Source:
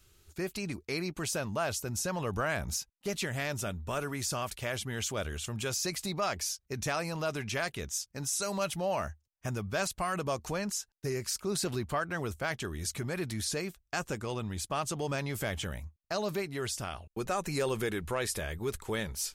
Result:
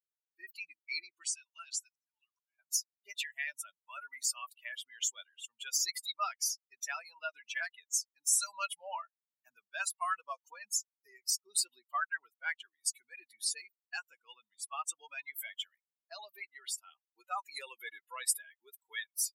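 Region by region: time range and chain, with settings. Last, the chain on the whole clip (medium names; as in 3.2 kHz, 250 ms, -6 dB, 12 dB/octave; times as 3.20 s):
1.22–2.59 s: frequency weighting ITU-R 468 + compression 2:1, threshold -41 dBFS + slow attack 751 ms
whole clip: expander on every frequency bin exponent 3; high-pass 980 Hz 24 dB/octave; dynamic bell 8.9 kHz, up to +6 dB, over -58 dBFS, Q 1.1; trim +6.5 dB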